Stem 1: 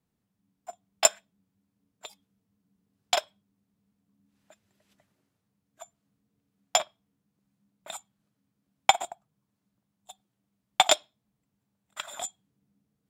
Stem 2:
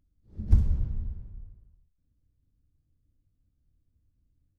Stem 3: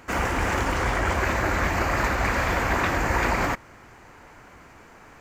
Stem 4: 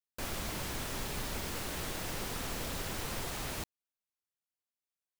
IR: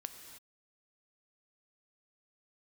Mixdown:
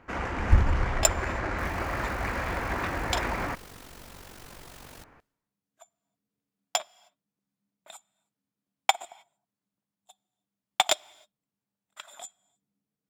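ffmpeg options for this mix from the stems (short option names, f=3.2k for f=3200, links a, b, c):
-filter_complex "[0:a]lowshelf=f=140:g=-11.5,aeval=exprs='0.794*(cos(1*acos(clip(val(0)/0.794,-1,1)))-cos(1*PI/2))+0.0562*(cos(7*acos(clip(val(0)/0.794,-1,1)))-cos(7*PI/2))':c=same,volume=-2.5dB,asplit=2[a][b];[b]volume=-16.5dB[c];[1:a]volume=0.5dB[d];[2:a]adynamicsmooth=sensitivity=2.5:basefreq=3k,volume=-7.5dB,asplit=2[e][f];[f]volume=-19.5dB[g];[3:a]asoftclip=type=tanh:threshold=-33.5dB,tremolo=f=47:d=0.71,adelay=1400,volume=-5dB,asplit=2[h][i];[i]volume=-22.5dB[j];[4:a]atrim=start_sample=2205[k];[c][g][j]amix=inputs=3:normalize=0[l];[l][k]afir=irnorm=-1:irlink=0[m];[a][d][e][h][m]amix=inputs=5:normalize=0"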